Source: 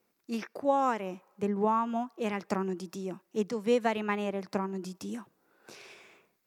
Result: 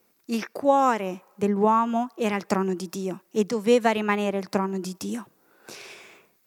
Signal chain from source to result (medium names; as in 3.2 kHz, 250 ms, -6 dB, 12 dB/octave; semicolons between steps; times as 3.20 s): treble shelf 6.4 kHz +6 dB; trim +7 dB